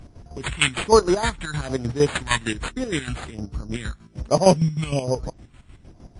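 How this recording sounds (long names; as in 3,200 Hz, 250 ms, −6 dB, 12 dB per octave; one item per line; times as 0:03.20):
phaser sweep stages 2, 1.2 Hz, lowest notch 460–3,100 Hz
chopped level 6.5 Hz, depth 65%, duty 45%
aliases and images of a low sample rate 5,500 Hz, jitter 0%
MP3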